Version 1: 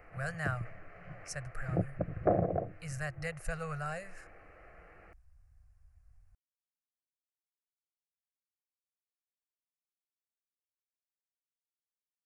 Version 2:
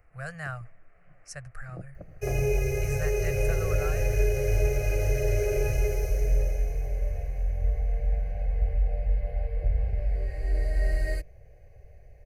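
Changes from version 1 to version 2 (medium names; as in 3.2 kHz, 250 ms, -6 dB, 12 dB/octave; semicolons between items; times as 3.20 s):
first sound -11.5 dB; second sound: unmuted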